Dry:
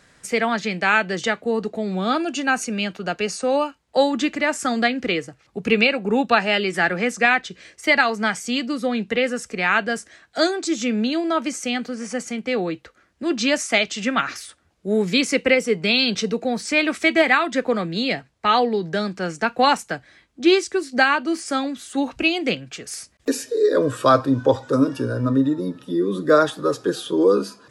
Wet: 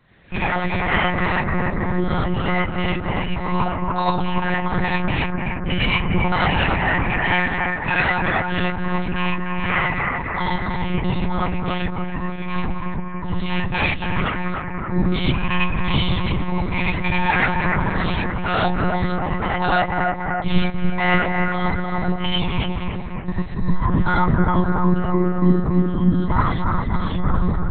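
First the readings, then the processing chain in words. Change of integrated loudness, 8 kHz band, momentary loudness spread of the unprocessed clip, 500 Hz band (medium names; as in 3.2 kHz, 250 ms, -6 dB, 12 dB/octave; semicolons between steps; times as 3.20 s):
-0.5 dB, under -40 dB, 9 LU, -6.5 dB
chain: every band turned upside down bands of 500 Hz; on a send: bucket-brigade echo 289 ms, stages 4096, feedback 63%, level -4 dB; on the sum: gated-style reverb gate 120 ms rising, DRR -5.5 dB; in parallel at -2 dB: peak limiter -9 dBFS, peak gain reduction 12.5 dB; on the sum: monotone LPC vocoder at 8 kHz 180 Hz; peaking EQ 170 Hz +4 dB 1.2 oct; trim -10.5 dB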